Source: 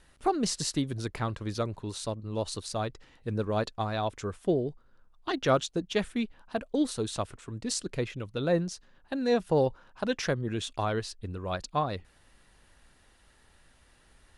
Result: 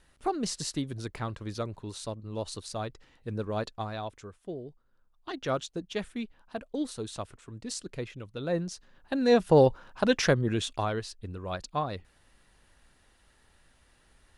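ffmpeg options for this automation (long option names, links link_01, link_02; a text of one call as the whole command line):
ffmpeg -i in.wav -af "volume=16dB,afade=type=out:start_time=3.76:duration=0.61:silence=0.298538,afade=type=in:start_time=4.37:duration=1.29:silence=0.375837,afade=type=in:start_time=8.44:duration=1.14:silence=0.298538,afade=type=out:start_time=10.33:duration=0.63:silence=0.421697" out.wav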